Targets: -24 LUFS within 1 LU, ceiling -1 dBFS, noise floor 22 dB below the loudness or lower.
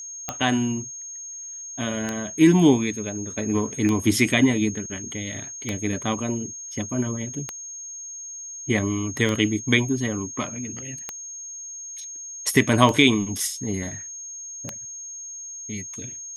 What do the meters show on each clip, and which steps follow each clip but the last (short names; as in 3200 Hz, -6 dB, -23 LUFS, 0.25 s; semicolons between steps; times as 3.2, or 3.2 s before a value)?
clicks 9; steady tone 6500 Hz; tone level -34 dBFS; loudness -24.5 LUFS; peak -1.5 dBFS; loudness target -24.0 LUFS
-> de-click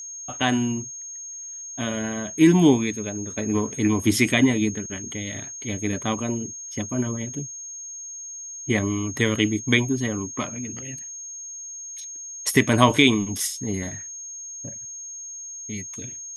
clicks 0; steady tone 6500 Hz; tone level -34 dBFS
-> notch 6500 Hz, Q 30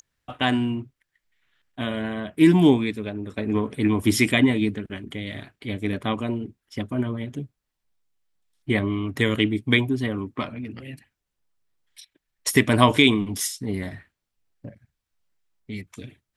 steady tone none; loudness -23.0 LUFS; peak -1.0 dBFS; loudness target -24.0 LUFS
-> gain -1 dB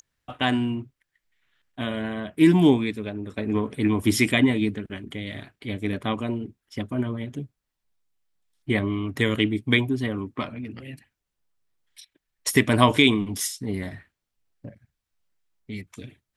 loudness -24.0 LUFS; peak -2.0 dBFS; noise floor -83 dBFS